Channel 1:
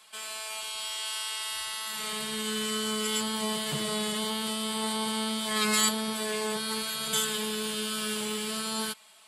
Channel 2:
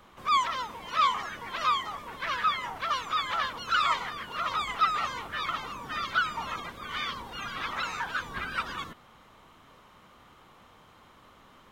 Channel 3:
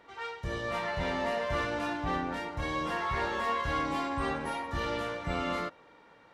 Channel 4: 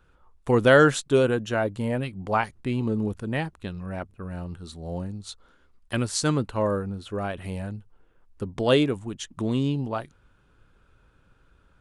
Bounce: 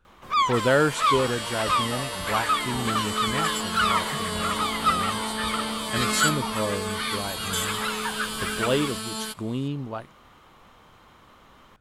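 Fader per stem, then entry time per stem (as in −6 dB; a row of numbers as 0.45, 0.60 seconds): −0.5, +2.5, −5.5, −4.0 decibels; 0.40, 0.05, 0.70, 0.00 seconds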